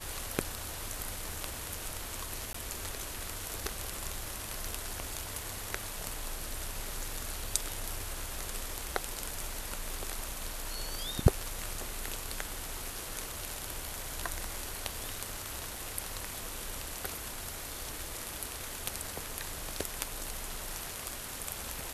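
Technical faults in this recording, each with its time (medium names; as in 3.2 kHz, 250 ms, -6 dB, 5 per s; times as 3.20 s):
2.53–2.54 s: dropout 14 ms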